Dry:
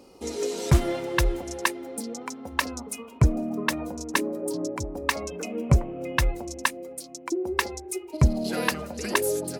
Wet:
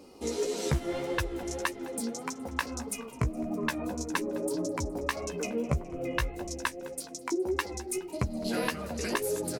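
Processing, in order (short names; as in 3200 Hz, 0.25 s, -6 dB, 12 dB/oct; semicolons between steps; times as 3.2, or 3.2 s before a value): compressor 6:1, threshold -26 dBFS, peak gain reduction 13 dB; flange 1.7 Hz, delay 9.7 ms, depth 7.9 ms, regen +19%; frequency-shifting echo 0.209 s, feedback 54%, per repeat -65 Hz, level -19.5 dB; gain +3 dB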